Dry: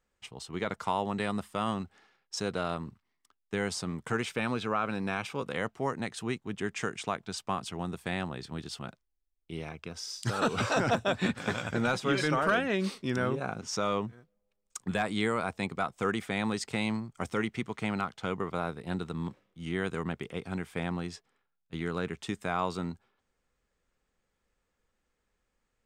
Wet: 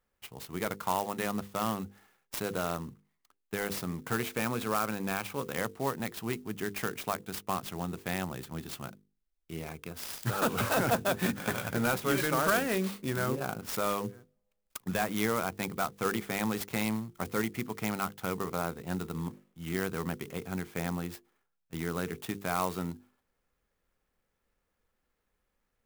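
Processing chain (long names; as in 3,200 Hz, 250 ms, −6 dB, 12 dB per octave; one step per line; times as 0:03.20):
mains-hum notches 50/100/150/200/250/300/350/400/450/500 Hz
converter with an unsteady clock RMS 0.046 ms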